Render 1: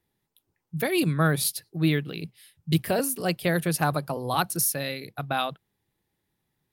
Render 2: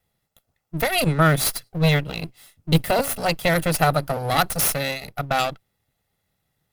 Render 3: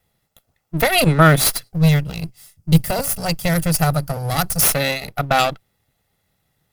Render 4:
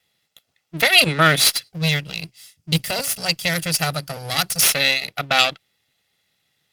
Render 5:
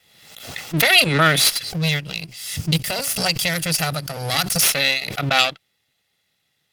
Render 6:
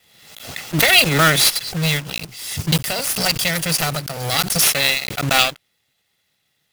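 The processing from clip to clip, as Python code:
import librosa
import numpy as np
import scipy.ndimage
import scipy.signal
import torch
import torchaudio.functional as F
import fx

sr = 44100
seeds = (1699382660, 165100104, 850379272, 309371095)

y1 = fx.lower_of_two(x, sr, delay_ms=1.5)
y1 = y1 * 10.0 ** (5.5 / 20.0)
y2 = fx.spec_box(y1, sr, start_s=1.71, length_s=2.92, low_hz=210.0, high_hz=4500.0, gain_db=-8)
y2 = y2 * 10.0 ** (5.5 / 20.0)
y3 = fx.weighting(y2, sr, curve='D')
y3 = y3 * 10.0 ** (-4.5 / 20.0)
y4 = fx.pre_swell(y3, sr, db_per_s=56.0)
y4 = y4 * 10.0 ** (-1.0 / 20.0)
y5 = fx.block_float(y4, sr, bits=3)
y5 = y5 * 10.0 ** (1.0 / 20.0)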